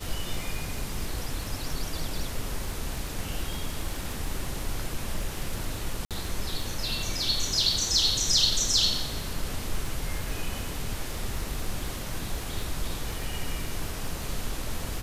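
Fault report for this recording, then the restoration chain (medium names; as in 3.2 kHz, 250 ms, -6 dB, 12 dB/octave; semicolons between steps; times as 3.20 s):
crackle 29 per s -33 dBFS
6.05–6.11 s: dropout 57 ms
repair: de-click; interpolate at 6.05 s, 57 ms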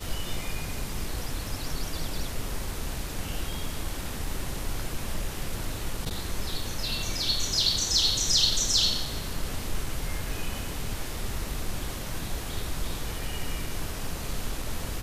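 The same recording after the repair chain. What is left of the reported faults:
nothing left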